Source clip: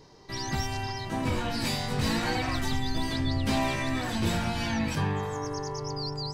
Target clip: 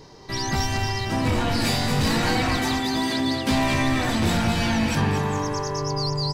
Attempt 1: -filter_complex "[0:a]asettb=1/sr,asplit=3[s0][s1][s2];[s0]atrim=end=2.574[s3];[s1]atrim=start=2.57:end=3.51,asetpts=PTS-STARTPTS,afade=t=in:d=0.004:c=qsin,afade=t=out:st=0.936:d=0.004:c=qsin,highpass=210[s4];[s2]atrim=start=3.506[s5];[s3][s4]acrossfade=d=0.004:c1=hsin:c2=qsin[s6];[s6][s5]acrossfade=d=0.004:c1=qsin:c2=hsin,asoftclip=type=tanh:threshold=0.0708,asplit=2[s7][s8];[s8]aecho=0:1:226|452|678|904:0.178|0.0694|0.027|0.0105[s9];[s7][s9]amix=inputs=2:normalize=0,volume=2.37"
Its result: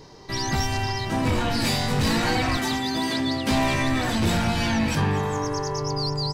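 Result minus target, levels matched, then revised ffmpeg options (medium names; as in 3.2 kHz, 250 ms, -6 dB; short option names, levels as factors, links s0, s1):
echo-to-direct -8 dB
-filter_complex "[0:a]asettb=1/sr,asplit=3[s0][s1][s2];[s0]atrim=end=2.574[s3];[s1]atrim=start=2.57:end=3.51,asetpts=PTS-STARTPTS,afade=t=in:d=0.004:c=qsin,afade=t=out:st=0.936:d=0.004:c=qsin,highpass=210[s4];[s2]atrim=start=3.506[s5];[s3][s4]acrossfade=d=0.004:c1=hsin:c2=qsin[s6];[s6][s5]acrossfade=d=0.004:c1=qsin:c2=hsin,asoftclip=type=tanh:threshold=0.0708,asplit=2[s7][s8];[s8]aecho=0:1:226|452|678|904|1130:0.447|0.174|0.0679|0.0265|0.0103[s9];[s7][s9]amix=inputs=2:normalize=0,volume=2.37"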